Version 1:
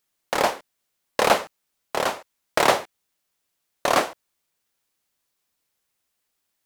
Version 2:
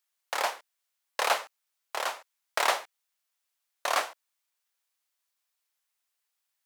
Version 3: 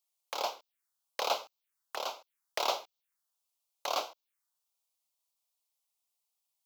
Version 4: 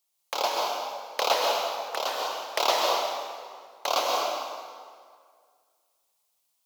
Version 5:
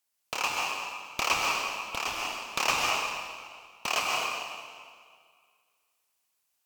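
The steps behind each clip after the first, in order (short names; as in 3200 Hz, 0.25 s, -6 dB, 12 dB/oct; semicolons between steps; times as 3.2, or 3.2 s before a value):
HPF 780 Hz 12 dB/oct; gain -5 dB
envelope phaser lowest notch 280 Hz, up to 1800 Hz, full sweep at -34.5 dBFS; gain -1.5 dB
reverb RT60 2.0 s, pre-delay 0.118 s, DRR -1.5 dB; gain +6.5 dB
ring modulator 1800 Hz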